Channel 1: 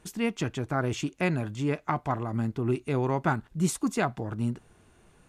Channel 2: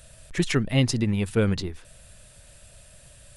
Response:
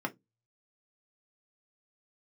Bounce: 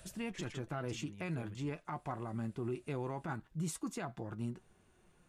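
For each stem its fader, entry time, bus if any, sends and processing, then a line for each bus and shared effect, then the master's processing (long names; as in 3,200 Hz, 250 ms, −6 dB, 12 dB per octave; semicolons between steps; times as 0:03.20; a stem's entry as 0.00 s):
−4.5 dB, 0.00 s, no send, flanger 0.42 Hz, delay 5.2 ms, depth 1.2 ms, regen +63%
−14.5 dB, 0.00 s, no send, multiband upward and downward compressor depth 40%; automatic ducking −13 dB, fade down 0.60 s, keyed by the first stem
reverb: not used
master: brickwall limiter −30 dBFS, peak gain reduction 11.5 dB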